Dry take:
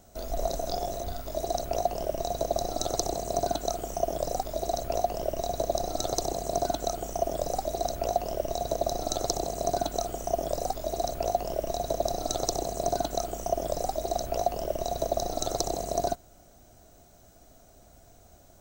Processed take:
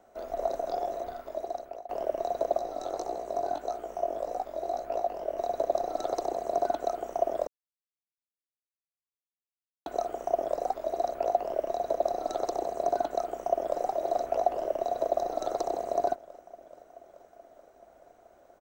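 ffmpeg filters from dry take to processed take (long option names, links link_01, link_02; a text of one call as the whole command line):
ffmpeg -i in.wav -filter_complex "[0:a]asettb=1/sr,asplit=3[link_01][link_02][link_03];[link_01]atrim=end=2.584[link_04];[link_02]atrim=start=2.58:end=5.38,asetpts=PTS-STARTPTS,afade=type=in:duration=0.004:curve=qsin,afade=type=out:start_time=2.796:duration=0.004:curve=qsin,flanger=delay=16.5:depth=5.4:speed=1.7[link_05];[link_03]atrim=start=5.376[link_06];[link_04][link_05]acrossfade=duration=0.004:curve1=hsin:curve2=qsin[link_07];[link_07][link_06]acrossfade=duration=0.004:curve1=qsin:curve2=hsin,asplit=2[link_08][link_09];[link_09]afade=type=in:start_time=13.27:duration=0.01,afade=type=out:start_time=13.81:duration=0.01,aecho=0:1:430|860|1290|1720|2150|2580|3010|3440|3870|4300|4730|5160:0.501187|0.37589|0.281918|0.211438|0.158579|0.118934|0.0892006|0.0669004|0.0501753|0.0376315|0.0282236|0.0211677[link_10];[link_08][link_10]amix=inputs=2:normalize=0,asplit=4[link_11][link_12][link_13][link_14];[link_11]atrim=end=1.89,asetpts=PTS-STARTPTS,afade=type=out:start_time=1.11:duration=0.78:silence=0.0794328[link_15];[link_12]atrim=start=1.89:end=7.47,asetpts=PTS-STARTPTS,afade=type=in:duration=0.004:curve=hsin:silence=0.0794328,afade=type=out:start_time=5.576:duration=0.004:curve=hsin[link_16];[link_13]atrim=start=7.47:end=9.86,asetpts=PTS-STARTPTS,volume=0[link_17];[link_14]atrim=start=9.86,asetpts=PTS-STARTPTS,afade=type=in:duration=0.004:curve=hsin[link_18];[link_15][link_16][link_17][link_18]concat=n=4:v=0:a=1,acrossover=split=310 2300:gain=0.1 1 0.126[link_19][link_20][link_21];[link_19][link_20][link_21]amix=inputs=3:normalize=0,volume=1.5dB" out.wav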